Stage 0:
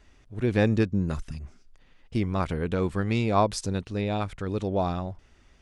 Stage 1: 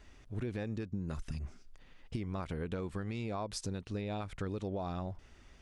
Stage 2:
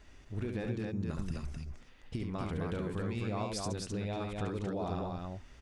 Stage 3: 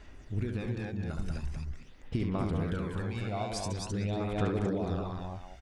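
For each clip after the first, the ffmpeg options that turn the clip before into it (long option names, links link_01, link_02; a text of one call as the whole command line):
ffmpeg -i in.wav -af "alimiter=limit=-21dB:level=0:latency=1:release=275,acompressor=threshold=-34dB:ratio=6" out.wav
ffmpeg -i in.wav -af "aecho=1:1:69.97|259.5:0.562|0.708" out.wav
ffmpeg -i in.wav -filter_complex "[0:a]aphaser=in_gain=1:out_gain=1:delay=1.4:decay=0.51:speed=0.45:type=sinusoidal,asplit=2[link_01][link_02];[link_02]adelay=190,highpass=300,lowpass=3400,asoftclip=type=hard:threshold=-26.5dB,volume=-6dB[link_03];[link_01][link_03]amix=inputs=2:normalize=0" out.wav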